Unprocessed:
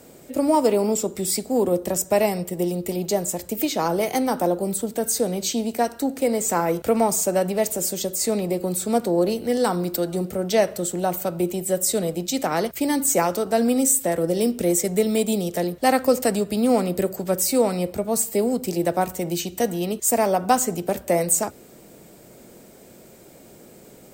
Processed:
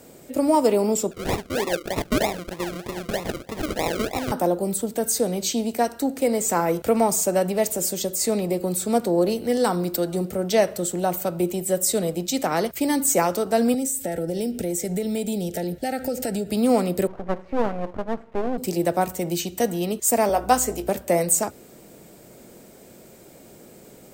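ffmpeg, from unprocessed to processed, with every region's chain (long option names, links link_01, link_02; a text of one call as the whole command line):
ffmpeg -i in.wav -filter_complex "[0:a]asettb=1/sr,asplit=3[link_01][link_02][link_03];[link_01]atrim=end=1.114[link_04];[link_02]atrim=start=1.11:end=4.32,asetpts=PTS-STARTPTS,afade=type=in:duration=0.004:curve=qsin,afade=type=out:start_time=3.206:duration=0.004:curve=qsin,lowshelf=frequency=370:gain=-11,acrusher=samples=40:mix=1:aa=0.000001:lfo=1:lforange=24:lforate=3.2[link_05];[link_03]atrim=start=4.316[link_06];[link_04][link_05]acrossfade=duration=0.004:curve1=hsin:curve2=qsin[link_07];[link_07][link_06]acrossfade=duration=0.004:curve1=qsin:curve2=hsin,asettb=1/sr,asplit=3[link_08][link_09][link_10];[link_08]atrim=end=13.744[link_11];[link_09]atrim=start=13.74:end=16.5,asetpts=PTS-STARTPTS,afade=type=in:duration=0.004:curve=qsin,afade=type=out:start_time=2.756:duration=0.004:curve=qsin,lowshelf=frequency=150:gain=7,acompressor=threshold=-23dB:ratio=4:attack=3.2:release=140:knee=1:detection=peak,asuperstop=centerf=1100:order=20:qfactor=2.9[link_12];[link_10]atrim=start=16.496[link_13];[link_11][link_12]acrossfade=duration=0.004:curve1=hsin:curve2=qsin[link_14];[link_14][link_13]acrossfade=duration=0.004:curve1=qsin:curve2=hsin,asettb=1/sr,asplit=3[link_15][link_16][link_17];[link_15]atrim=end=17.074[link_18];[link_16]atrim=start=17.07:end=18.58,asetpts=PTS-STARTPTS,afade=type=in:duration=0.004:curve=qsin,afade=type=out:start_time=1.506:duration=0.004:curve=qsin,lowpass=frequency=1700:width=0.5412,lowpass=frequency=1700:width=1.3066,aeval=exprs='max(val(0),0)':channel_layout=same[link_19];[link_17]atrim=start=18.576[link_20];[link_18][link_19]acrossfade=duration=0.004:curve1=hsin:curve2=qsin[link_21];[link_21][link_20]acrossfade=duration=0.004:curve1=qsin:curve2=hsin,asettb=1/sr,asplit=3[link_22][link_23][link_24];[link_22]atrim=end=20.294[link_25];[link_23]atrim=start=20.29:end=20.89,asetpts=PTS-STARTPTS,afade=type=in:duration=0.004:curve=qsin,afade=type=out:start_time=0.596:duration=0.004:curve=qsin,highpass=270,aeval=exprs='val(0)+0.0112*(sin(2*PI*60*n/s)+sin(2*PI*2*60*n/s)/2+sin(2*PI*3*60*n/s)/3+sin(2*PI*4*60*n/s)/4+sin(2*PI*5*60*n/s)/5)':channel_layout=same,asplit=2[link_26][link_27];[link_27]adelay=20,volume=-11dB[link_28];[link_26][link_28]amix=inputs=2:normalize=0,atrim=end_sample=26460[link_29];[link_24]atrim=start=20.886[link_30];[link_25][link_29]acrossfade=duration=0.004:curve1=hsin:curve2=qsin[link_31];[link_31][link_30]acrossfade=duration=0.004:curve1=qsin:curve2=hsin" out.wav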